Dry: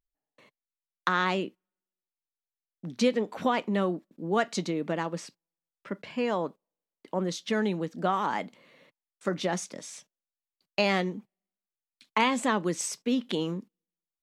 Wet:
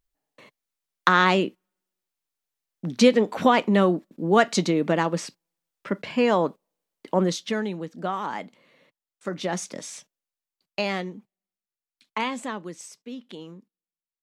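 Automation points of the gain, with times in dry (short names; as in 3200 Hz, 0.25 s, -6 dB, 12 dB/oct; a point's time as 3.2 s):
7.24 s +8 dB
7.66 s -1.5 dB
9.29 s -1.5 dB
9.78 s +5.5 dB
11.08 s -3 dB
12.27 s -3 dB
12.88 s -10.5 dB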